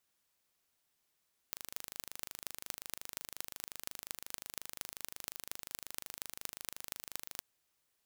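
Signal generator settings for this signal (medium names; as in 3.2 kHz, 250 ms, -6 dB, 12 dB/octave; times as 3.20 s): pulse train 25.6 per s, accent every 6, -10.5 dBFS 5.89 s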